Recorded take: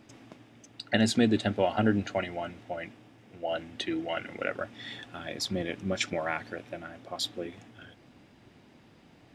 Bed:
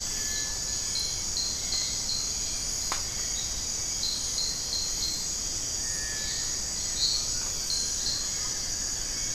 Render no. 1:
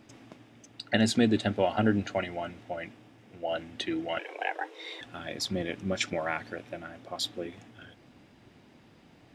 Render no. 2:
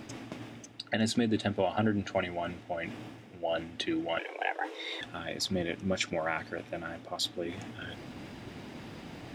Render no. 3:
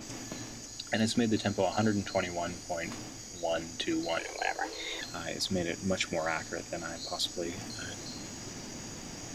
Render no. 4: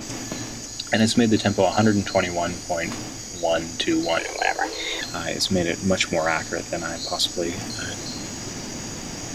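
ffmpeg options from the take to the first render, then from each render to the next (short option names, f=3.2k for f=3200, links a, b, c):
-filter_complex "[0:a]asettb=1/sr,asplit=3[a][b][c];[a]atrim=end=4.194[d];[b]atrim=start=4.19:end=5.01,asetpts=PTS-STARTPTS,afade=t=in:d=0.004:c=qsin,afade=t=out:st=0.816:d=0.004:c=qsin,afreqshift=210[e];[c]atrim=start=5.006[f];[d][e]acrossfade=d=0.004:c1=hsin:c2=qsin[g];[g][f]acrossfade=d=0.004:c1=qsin:c2=hsin"
-af "alimiter=limit=-17dB:level=0:latency=1:release=266,areverse,acompressor=mode=upward:threshold=-32dB:ratio=2.5,areverse"
-filter_complex "[1:a]volume=-15.5dB[a];[0:a][a]amix=inputs=2:normalize=0"
-af "volume=10dB"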